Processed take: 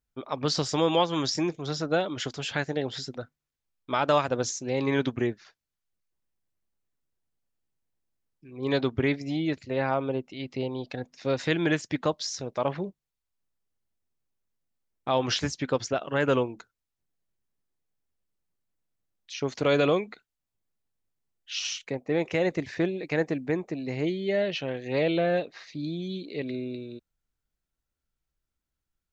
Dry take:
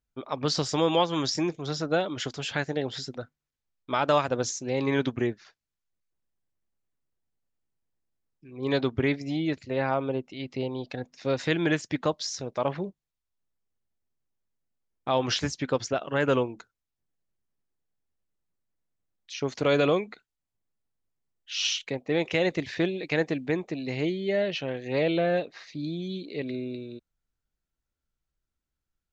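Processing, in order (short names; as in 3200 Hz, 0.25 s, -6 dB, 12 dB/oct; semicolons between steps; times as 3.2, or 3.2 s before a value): 21.59–24.07 bell 3400 Hz -8 dB 0.98 oct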